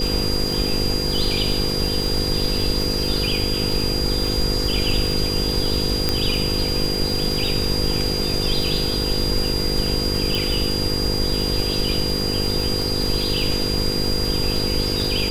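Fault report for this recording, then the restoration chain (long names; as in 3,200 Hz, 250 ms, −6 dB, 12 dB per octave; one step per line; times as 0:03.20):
mains buzz 50 Hz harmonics 10 −26 dBFS
surface crackle 39 per second −24 dBFS
whistle 4,800 Hz −24 dBFS
0:06.09: click −4 dBFS
0:10.35: click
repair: click removal
hum removal 50 Hz, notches 10
notch filter 4,800 Hz, Q 30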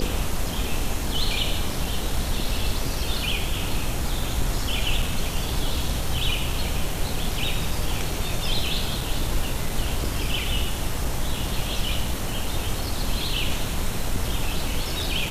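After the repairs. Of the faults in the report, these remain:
none of them is left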